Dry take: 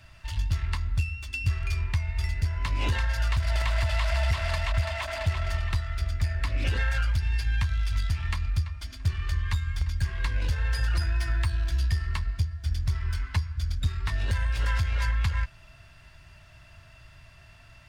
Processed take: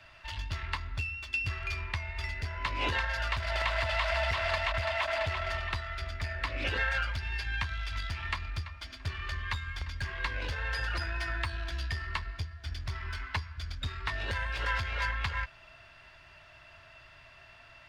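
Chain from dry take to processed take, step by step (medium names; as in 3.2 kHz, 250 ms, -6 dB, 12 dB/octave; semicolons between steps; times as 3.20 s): three-band isolator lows -13 dB, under 310 Hz, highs -14 dB, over 4.7 kHz; trim +2.5 dB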